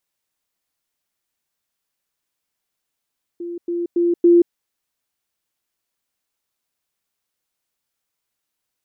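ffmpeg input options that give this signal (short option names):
-f lavfi -i "aevalsrc='pow(10,(-26+6*floor(t/0.28))/20)*sin(2*PI*345*t)*clip(min(mod(t,0.28),0.18-mod(t,0.28))/0.005,0,1)':d=1.12:s=44100"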